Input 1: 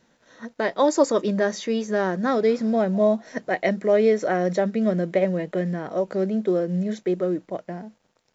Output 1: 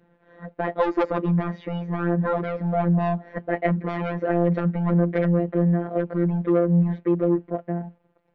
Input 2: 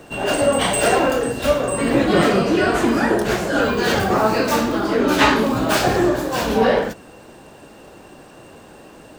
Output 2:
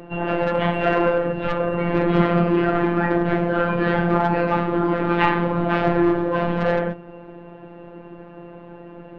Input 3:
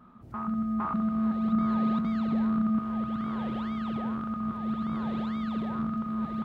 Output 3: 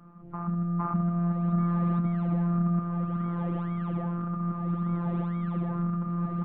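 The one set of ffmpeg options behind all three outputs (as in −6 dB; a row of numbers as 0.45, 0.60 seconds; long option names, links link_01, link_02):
-filter_complex "[0:a]lowpass=frequency=2800:width=0.5412,lowpass=frequency=2800:width=1.3066,tiltshelf=frequency=1100:gain=6,acrossover=split=140|1000[link_01][link_02][link_03];[link_02]asoftclip=type=tanh:threshold=-17.5dB[link_04];[link_01][link_04][link_03]amix=inputs=3:normalize=0,afftfilt=real='hypot(re,im)*cos(PI*b)':imag='0':win_size=1024:overlap=0.75,volume=2.5dB"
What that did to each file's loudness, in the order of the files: −0.5, −2.5, +0.5 LU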